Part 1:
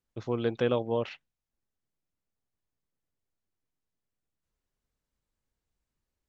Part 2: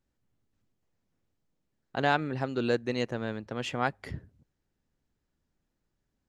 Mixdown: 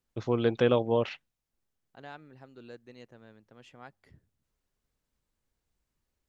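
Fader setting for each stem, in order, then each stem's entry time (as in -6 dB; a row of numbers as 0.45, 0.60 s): +3.0, -20.0 dB; 0.00, 0.00 s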